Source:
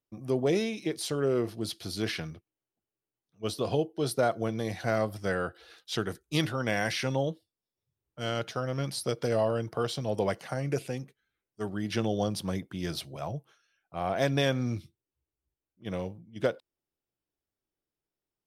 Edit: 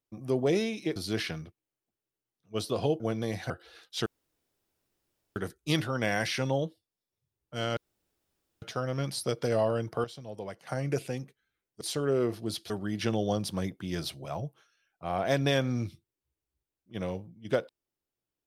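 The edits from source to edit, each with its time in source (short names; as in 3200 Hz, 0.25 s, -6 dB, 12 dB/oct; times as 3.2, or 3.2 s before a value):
0.96–1.85 move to 11.61
3.89–4.37 cut
4.87–5.45 cut
6.01 insert room tone 1.30 s
8.42 insert room tone 0.85 s
9.84–10.47 gain -11 dB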